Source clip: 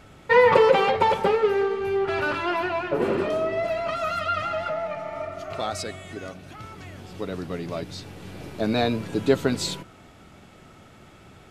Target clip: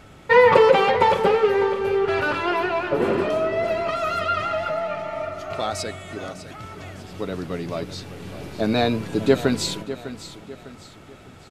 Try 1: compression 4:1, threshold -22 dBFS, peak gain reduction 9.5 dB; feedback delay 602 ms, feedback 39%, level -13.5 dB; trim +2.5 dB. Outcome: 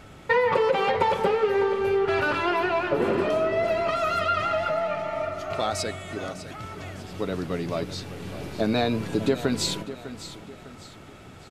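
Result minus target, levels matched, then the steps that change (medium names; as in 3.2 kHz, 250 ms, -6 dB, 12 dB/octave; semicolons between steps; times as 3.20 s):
compression: peak gain reduction +9.5 dB
remove: compression 4:1, threshold -22 dBFS, peak gain reduction 9.5 dB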